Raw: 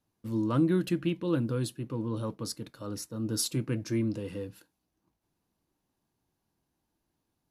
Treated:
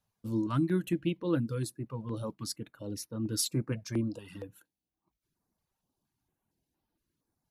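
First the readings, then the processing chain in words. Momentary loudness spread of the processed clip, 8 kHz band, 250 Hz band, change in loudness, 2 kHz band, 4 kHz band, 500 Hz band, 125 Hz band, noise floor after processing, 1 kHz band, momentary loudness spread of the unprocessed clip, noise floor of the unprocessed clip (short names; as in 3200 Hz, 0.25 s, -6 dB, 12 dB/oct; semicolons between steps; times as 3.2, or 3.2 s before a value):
11 LU, -0.5 dB, -2.5 dB, -2.0 dB, -2.0 dB, -1.0 dB, -3.0 dB, -2.0 dB, under -85 dBFS, -2.0 dB, 12 LU, -82 dBFS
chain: reverb removal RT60 0.99 s; stepped notch 4.3 Hz 310–7600 Hz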